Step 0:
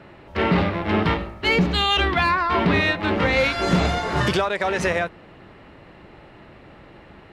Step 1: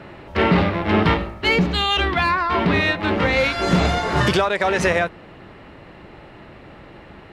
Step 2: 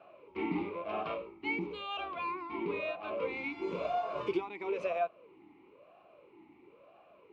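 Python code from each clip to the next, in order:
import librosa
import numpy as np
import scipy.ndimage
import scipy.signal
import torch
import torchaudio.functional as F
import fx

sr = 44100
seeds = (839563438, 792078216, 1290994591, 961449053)

y1 = fx.rider(x, sr, range_db=5, speed_s=0.5)
y1 = y1 * 10.0 ** (2.0 / 20.0)
y2 = fx.notch(y1, sr, hz=920.0, q=15.0)
y2 = fx.vowel_sweep(y2, sr, vowels='a-u', hz=1.0)
y2 = y2 * 10.0 ** (-5.5 / 20.0)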